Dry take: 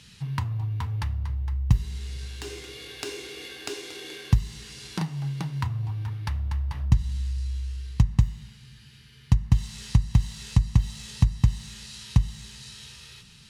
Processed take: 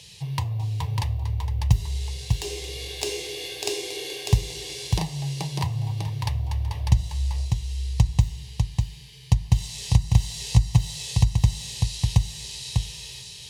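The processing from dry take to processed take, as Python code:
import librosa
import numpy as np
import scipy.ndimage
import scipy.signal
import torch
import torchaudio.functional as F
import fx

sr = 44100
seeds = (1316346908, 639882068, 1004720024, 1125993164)

p1 = fx.highpass(x, sr, hz=130.0, slope=6)
p2 = fx.fixed_phaser(p1, sr, hz=580.0, stages=4)
p3 = p2 + fx.echo_single(p2, sr, ms=598, db=-4.5, dry=0)
y = F.gain(torch.from_numpy(p3), 8.0).numpy()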